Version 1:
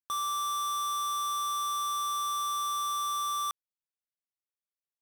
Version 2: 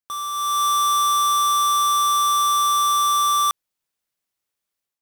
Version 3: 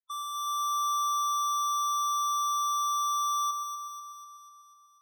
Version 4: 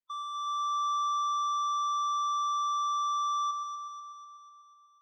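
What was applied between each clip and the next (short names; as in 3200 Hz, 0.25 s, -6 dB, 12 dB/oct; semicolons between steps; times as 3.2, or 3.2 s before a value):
AGC gain up to 10.5 dB; gain +2.5 dB
soft clip -25 dBFS, distortion -19 dB; loudest bins only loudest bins 16; echo with dull and thin repeats by turns 0.123 s, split 1300 Hz, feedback 75%, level -3.5 dB; gain -6 dB
air absorption 170 m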